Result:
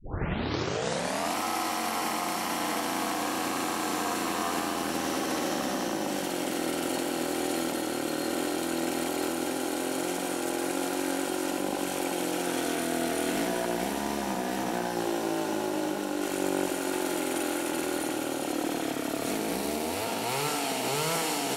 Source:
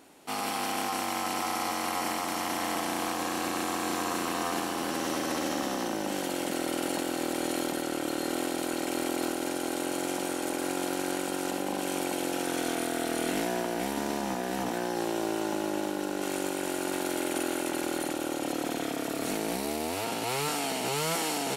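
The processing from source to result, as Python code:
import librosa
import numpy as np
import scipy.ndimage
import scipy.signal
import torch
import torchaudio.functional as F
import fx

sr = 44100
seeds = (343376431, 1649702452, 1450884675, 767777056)

y = fx.tape_start_head(x, sr, length_s=1.35)
y = fx.echo_split(y, sr, split_hz=2500.0, low_ms=84, high_ms=385, feedback_pct=52, wet_db=-7)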